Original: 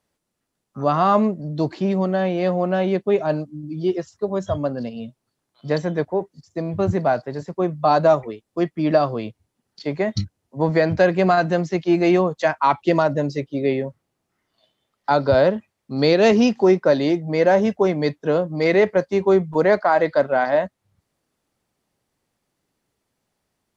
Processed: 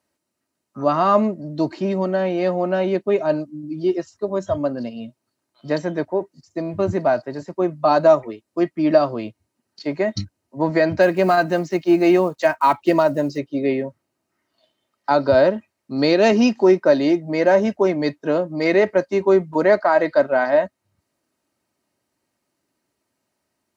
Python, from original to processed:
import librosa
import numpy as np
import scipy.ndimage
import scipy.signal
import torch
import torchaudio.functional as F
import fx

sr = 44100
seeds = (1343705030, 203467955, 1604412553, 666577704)

y = fx.block_float(x, sr, bits=7, at=(11.01, 13.37), fade=0.02)
y = scipy.signal.sosfilt(scipy.signal.butter(2, 100.0, 'highpass', fs=sr, output='sos'), y)
y = fx.notch(y, sr, hz=3400.0, q=12.0)
y = y + 0.39 * np.pad(y, (int(3.2 * sr / 1000.0), 0))[:len(y)]